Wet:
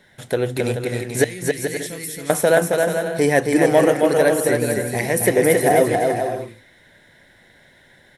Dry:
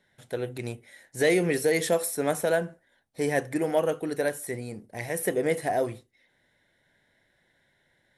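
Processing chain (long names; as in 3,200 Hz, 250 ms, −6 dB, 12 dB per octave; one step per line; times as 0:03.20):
0:01.24–0:02.30: guitar amp tone stack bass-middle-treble 6-0-2
in parallel at +1.5 dB: downward compressor, threshold −37 dBFS, peak gain reduction 17 dB
on the sum: bouncing-ball delay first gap 270 ms, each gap 0.6×, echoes 5
level +7.5 dB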